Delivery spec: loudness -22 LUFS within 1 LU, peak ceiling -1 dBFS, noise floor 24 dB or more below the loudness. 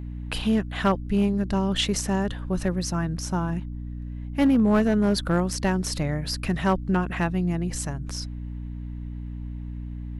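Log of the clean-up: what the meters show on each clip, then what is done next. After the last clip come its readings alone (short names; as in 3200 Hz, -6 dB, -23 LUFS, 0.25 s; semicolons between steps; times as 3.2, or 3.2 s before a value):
clipped 0.6%; flat tops at -14.0 dBFS; hum 60 Hz; harmonics up to 300 Hz; hum level -32 dBFS; loudness -25.0 LUFS; peak -14.0 dBFS; loudness target -22.0 LUFS
-> clip repair -14 dBFS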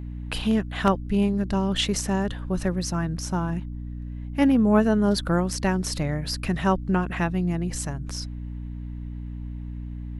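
clipped 0.0%; hum 60 Hz; harmonics up to 300 Hz; hum level -32 dBFS
-> notches 60/120/180/240/300 Hz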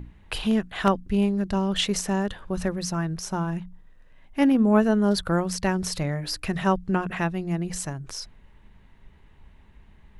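hum none; loudness -25.5 LUFS; peak -5.5 dBFS; loudness target -22.0 LUFS
-> gain +3.5 dB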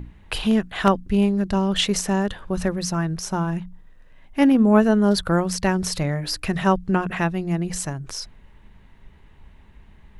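loudness -22.0 LUFS; peak -2.0 dBFS; noise floor -50 dBFS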